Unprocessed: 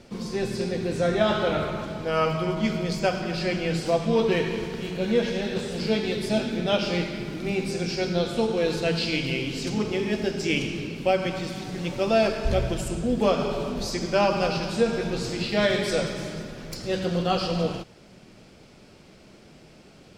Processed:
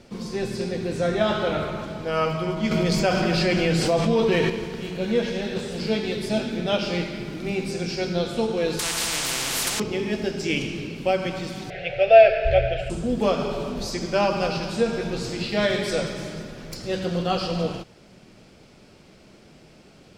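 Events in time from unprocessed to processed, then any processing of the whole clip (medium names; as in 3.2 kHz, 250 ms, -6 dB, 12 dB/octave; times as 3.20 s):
2.71–4.50 s: level flattener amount 70%
8.79–9.80 s: spectrum-flattening compressor 10:1
11.70–12.90 s: FFT filter 130 Hz 0 dB, 260 Hz -29 dB, 440 Hz +2 dB, 710 Hz +12 dB, 1 kHz -27 dB, 1.5 kHz +5 dB, 2.5 kHz +9 dB, 6.7 kHz -19 dB, 10 kHz -24 dB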